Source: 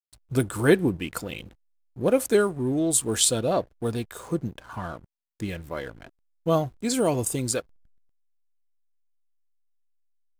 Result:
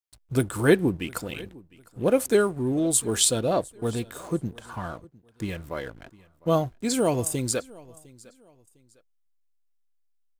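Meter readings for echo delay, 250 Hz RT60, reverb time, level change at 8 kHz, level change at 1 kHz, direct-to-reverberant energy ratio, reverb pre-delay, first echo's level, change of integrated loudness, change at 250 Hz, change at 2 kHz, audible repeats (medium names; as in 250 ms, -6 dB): 705 ms, no reverb, no reverb, 0.0 dB, 0.0 dB, no reverb, no reverb, -23.0 dB, 0.0 dB, 0.0 dB, 0.0 dB, 2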